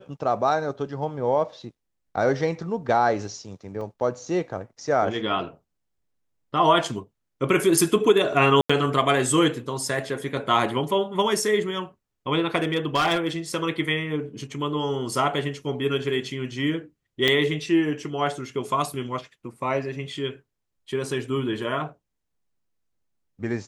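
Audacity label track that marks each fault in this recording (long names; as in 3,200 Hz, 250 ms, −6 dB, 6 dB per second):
3.810000	3.810000	drop-out 2.4 ms
8.610000	8.700000	drop-out 85 ms
12.560000	13.270000	clipping −17 dBFS
17.280000	17.280000	drop-out 2 ms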